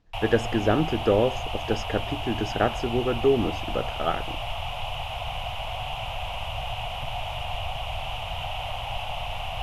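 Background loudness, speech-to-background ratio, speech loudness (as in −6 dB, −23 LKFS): −32.0 LKFS, 5.5 dB, −26.5 LKFS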